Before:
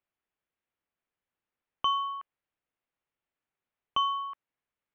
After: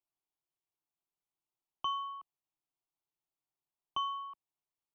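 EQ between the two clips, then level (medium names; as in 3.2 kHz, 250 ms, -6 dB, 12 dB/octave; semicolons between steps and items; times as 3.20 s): static phaser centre 340 Hz, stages 8; -4.5 dB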